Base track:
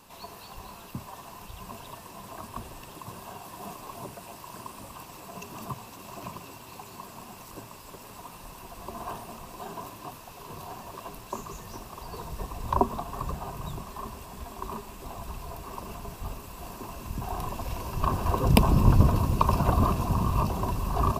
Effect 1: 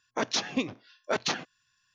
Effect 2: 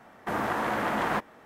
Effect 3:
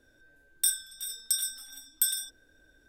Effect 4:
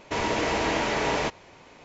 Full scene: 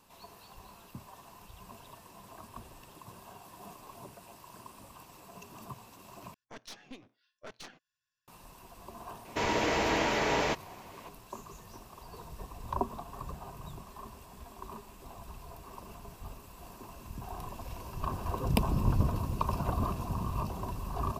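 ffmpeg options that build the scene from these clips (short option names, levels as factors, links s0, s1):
-filter_complex "[0:a]volume=0.376[s0];[1:a]aeval=exprs='(tanh(20*val(0)+0.75)-tanh(0.75))/20':c=same[s1];[s0]asplit=2[s2][s3];[s2]atrim=end=6.344[s4];[s1]atrim=end=1.94,asetpts=PTS-STARTPTS,volume=0.2[s5];[s3]atrim=start=8.276[s6];[4:a]atrim=end=1.84,asetpts=PTS-STARTPTS,volume=0.708,afade=t=in:d=0.004:c=hsin,afade=t=out:st=1.836:d=0.004:c=hsin,adelay=9250[s7];[s4][s5]acrossfade=d=0.004:c1=hsin:c2=hsin[s8];[s8][s6]acrossfade=d=0.004:c1=hsin:c2=hsin[s9];[s9][s7]amix=inputs=2:normalize=0"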